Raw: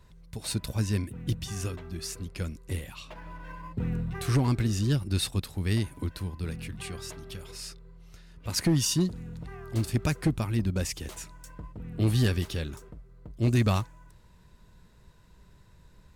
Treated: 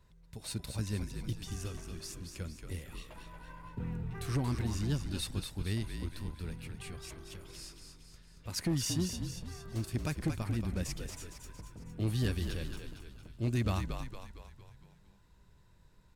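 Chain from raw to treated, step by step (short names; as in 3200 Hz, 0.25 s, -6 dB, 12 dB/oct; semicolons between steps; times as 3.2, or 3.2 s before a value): frequency-shifting echo 0.229 s, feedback 51%, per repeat -49 Hz, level -6.5 dB; gain -8 dB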